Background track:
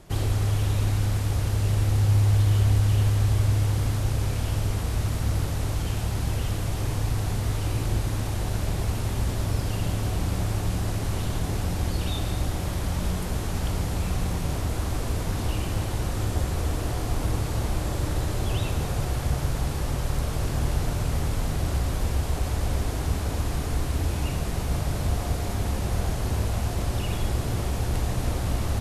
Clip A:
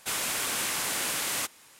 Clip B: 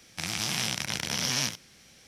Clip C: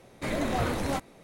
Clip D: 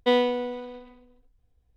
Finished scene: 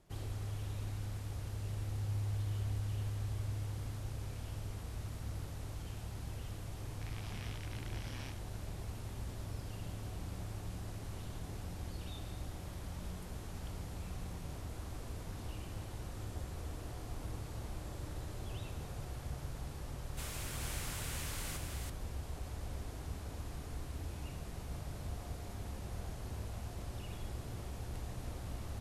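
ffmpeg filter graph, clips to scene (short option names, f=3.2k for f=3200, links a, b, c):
-filter_complex "[0:a]volume=-17dB[a];[2:a]lowpass=2.9k[b];[1:a]aecho=1:1:432:0.668[c];[b]atrim=end=2.07,asetpts=PTS-STARTPTS,volume=-17.5dB,afade=t=in:d=0.004:c=hsin,afade=t=out:st=2.066:d=0.004:c=hsin,adelay=6830[d];[c]atrim=end=1.79,asetpts=PTS-STARTPTS,volume=-16dB,afade=t=in:d=0.004:c=hsin,afade=t=out:st=1.786:d=0.004:c=hsin,adelay=20110[e];[a][d][e]amix=inputs=3:normalize=0"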